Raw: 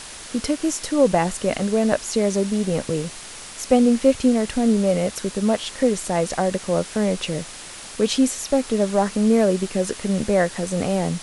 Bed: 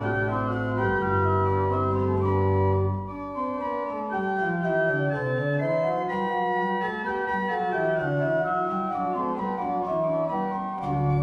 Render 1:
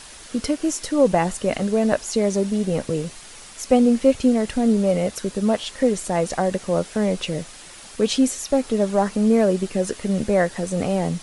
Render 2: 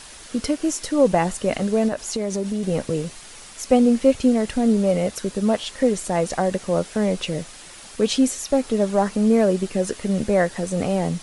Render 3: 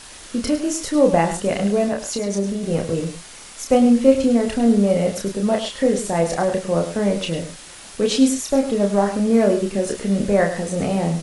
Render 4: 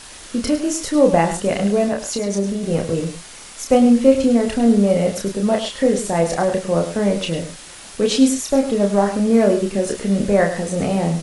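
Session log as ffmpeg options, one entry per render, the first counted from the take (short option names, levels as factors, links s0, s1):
-af "afftdn=nr=6:nf=-38"
-filter_complex "[0:a]asettb=1/sr,asplit=3[s0][s1][s2];[s0]atrim=end=1.884[s3];[s1]atrim=start=1.88:end=2.63,asetpts=PTS-STARTPTS,afade=t=in:d=0.004:c=qsin,afade=t=out:st=0.746:d=0.004:c=qsin,acompressor=threshold=0.0891:ratio=4:attack=3.2:release=140:knee=1:detection=peak[s4];[s2]atrim=start=2.626[s5];[s3][s4]acrossfade=d=0.004:c1=hsin:c2=qsin[s6];[s6][s5]acrossfade=d=0.004:c1=qsin:c2=hsin"
-filter_complex "[0:a]asplit=2[s0][s1];[s1]adelay=30,volume=0.631[s2];[s0][s2]amix=inputs=2:normalize=0,aecho=1:1:103:0.299"
-af "volume=1.19,alimiter=limit=0.891:level=0:latency=1"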